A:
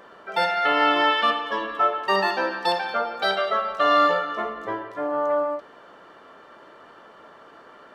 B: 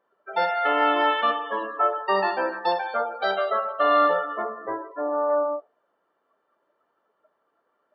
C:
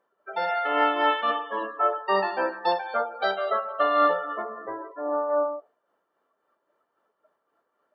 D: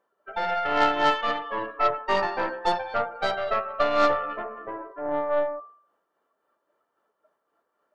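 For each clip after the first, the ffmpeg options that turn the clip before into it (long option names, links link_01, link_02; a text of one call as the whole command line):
ffmpeg -i in.wav -af "afftdn=noise_reduction=24:noise_floor=-32,equalizer=frequency=640:width=0.34:gain=9,volume=-8.5dB" out.wav
ffmpeg -i in.wav -af "tremolo=f=3.7:d=0.45" out.wav
ffmpeg -i in.wav -af "aeval=exprs='0.335*(cos(1*acos(clip(val(0)/0.335,-1,1)))-cos(1*PI/2))+0.0376*(cos(3*acos(clip(val(0)/0.335,-1,1)))-cos(3*PI/2))+0.0188*(cos(6*acos(clip(val(0)/0.335,-1,1)))-cos(6*PI/2))':channel_layout=same,bandreject=frequency=130.5:width_type=h:width=4,bandreject=frequency=261:width_type=h:width=4,bandreject=frequency=391.5:width_type=h:width=4,bandreject=frequency=522:width_type=h:width=4,bandreject=frequency=652.5:width_type=h:width=4,bandreject=frequency=783:width_type=h:width=4,bandreject=frequency=913.5:width_type=h:width=4,bandreject=frequency=1044:width_type=h:width=4,bandreject=frequency=1174.5:width_type=h:width=4,bandreject=frequency=1305:width_type=h:width=4,bandreject=frequency=1435.5:width_type=h:width=4,bandreject=frequency=1566:width_type=h:width=4,bandreject=frequency=1696.5:width_type=h:width=4,bandreject=frequency=1827:width_type=h:width=4,bandreject=frequency=1957.5:width_type=h:width=4,volume=3dB" out.wav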